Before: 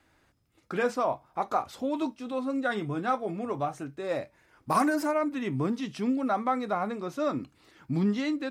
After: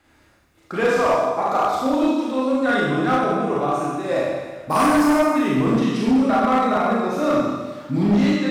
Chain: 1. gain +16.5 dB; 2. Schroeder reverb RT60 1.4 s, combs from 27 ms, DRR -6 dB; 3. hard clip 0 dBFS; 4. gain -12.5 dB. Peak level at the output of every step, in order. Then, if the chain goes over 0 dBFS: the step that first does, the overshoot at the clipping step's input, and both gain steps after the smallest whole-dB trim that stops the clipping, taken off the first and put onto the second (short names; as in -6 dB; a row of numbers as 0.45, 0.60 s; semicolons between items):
+3.5, +9.5, 0.0, -12.5 dBFS; step 1, 9.5 dB; step 1 +6.5 dB, step 4 -2.5 dB